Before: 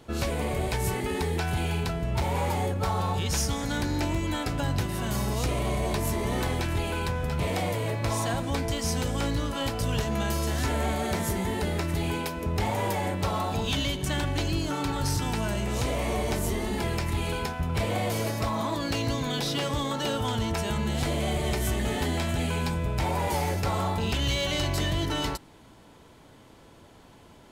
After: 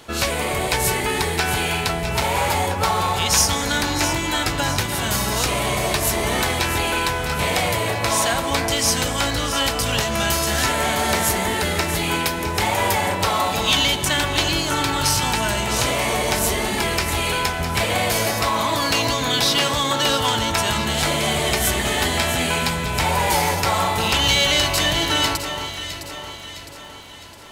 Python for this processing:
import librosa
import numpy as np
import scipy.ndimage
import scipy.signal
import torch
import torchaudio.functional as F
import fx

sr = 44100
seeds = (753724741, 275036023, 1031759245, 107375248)

y = fx.tilt_shelf(x, sr, db=-6.5, hz=630.0)
y = fx.dmg_crackle(y, sr, seeds[0], per_s=29.0, level_db=-47.0)
y = fx.echo_alternate(y, sr, ms=330, hz=1600.0, feedback_pct=70, wet_db=-7)
y = F.gain(torch.from_numpy(y), 7.0).numpy()